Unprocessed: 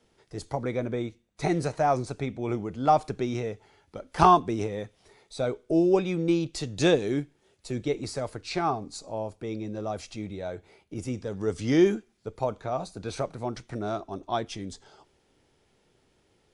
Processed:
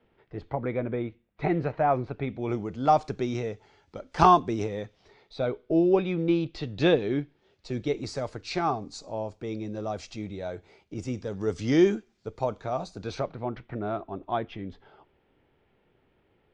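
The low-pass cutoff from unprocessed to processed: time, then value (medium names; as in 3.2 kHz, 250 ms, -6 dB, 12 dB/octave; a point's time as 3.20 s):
low-pass 24 dB/octave
2.17 s 2.9 kHz
2.57 s 6.8 kHz
4.69 s 6.8 kHz
5.44 s 4 kHz
7.14 s 4 kHz
8.13 s 6.9 kHz
13.04 s 6.9 kHz
13.48 s 2.9 kHz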